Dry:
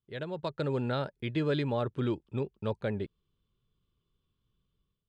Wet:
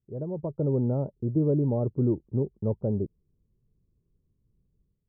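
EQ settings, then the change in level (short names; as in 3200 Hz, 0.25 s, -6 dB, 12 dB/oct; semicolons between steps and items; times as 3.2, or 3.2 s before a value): Gaussian blur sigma 13 samples; air absorption 490 m; +8.0 dB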